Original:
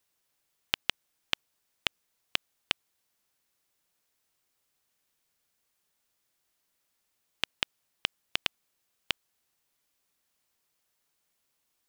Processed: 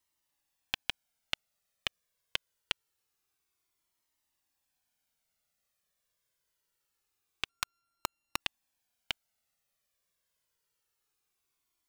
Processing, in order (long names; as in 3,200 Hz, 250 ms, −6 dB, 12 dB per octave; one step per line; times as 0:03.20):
0:07.49–0:08.40: samples sorted by size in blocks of 32 samples
flanger whose copies keep moving one way falling 0.25 Hz